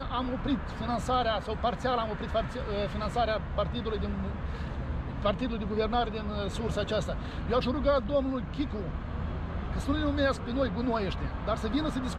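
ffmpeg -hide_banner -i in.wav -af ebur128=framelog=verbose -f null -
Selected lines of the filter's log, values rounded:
Integrated loudness:
  I:         -31.1 LUFS
  Threshold: -41.1 LUFS
Loudness range:
  LRA:         2.0 LU
  Threshold: -51.2 LUFS
  LRA low:   -32.2 LUFS
  LRA high:  -30.2 LUFS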